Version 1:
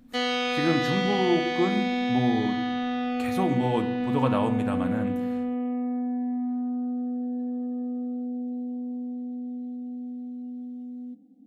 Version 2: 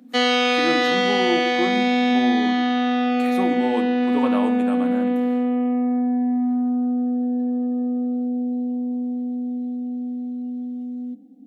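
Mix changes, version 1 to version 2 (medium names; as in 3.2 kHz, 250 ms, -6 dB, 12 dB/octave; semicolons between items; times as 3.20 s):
background +8.0 dB; master: add steep high-pass 200 Hz 36 dB/octave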